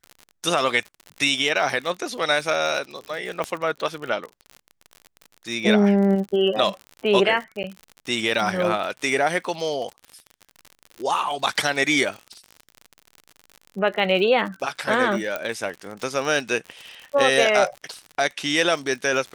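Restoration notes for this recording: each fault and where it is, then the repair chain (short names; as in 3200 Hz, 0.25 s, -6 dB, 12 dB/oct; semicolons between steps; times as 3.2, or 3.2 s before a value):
crackle 58/s -30 dBFS
3.44 pop -13 dBFS
7.63–7.64 gap 9.8 ms
15.36 pop -12 dBFS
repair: de-click; interpolate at 7.63, 9.8 ms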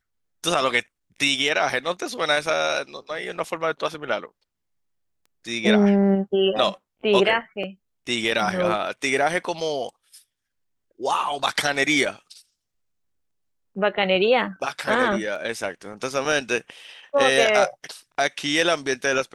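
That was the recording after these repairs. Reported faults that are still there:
3.44 pop
15.36 pop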